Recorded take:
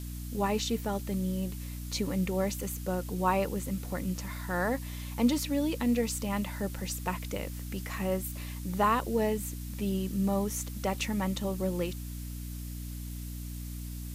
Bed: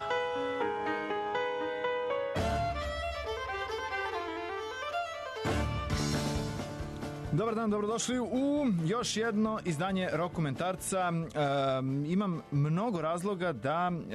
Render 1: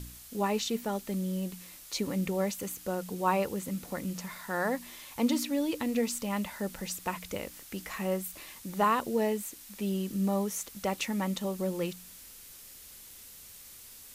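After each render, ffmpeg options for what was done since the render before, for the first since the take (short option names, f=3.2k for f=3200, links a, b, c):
-af "bandreject=f=60:t=h:w=4,bandreject=f=120:t=h:w=4,bandreject=f=180:t=h:w=4,bandreject=f=240:t=h:w=4,bandreject=f=300:t=h:w=4"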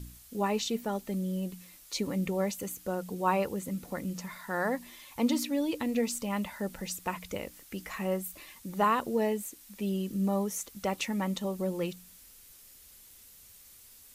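-af "afftdn=nr=6:nf=-50"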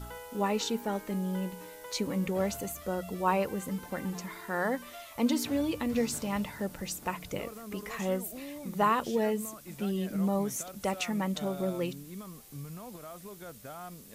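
-filter_complex "[1:a]volume=-13.5dB[a];[0:a][a]amix=inputs=2:normalize=0"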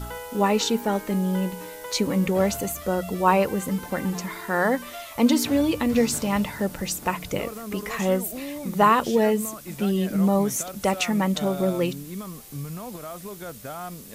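-af "volume=8.5dB"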